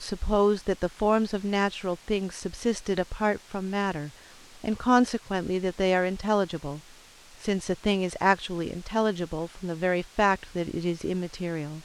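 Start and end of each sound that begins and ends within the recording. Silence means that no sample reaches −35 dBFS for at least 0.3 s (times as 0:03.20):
0:04.64–0:06.79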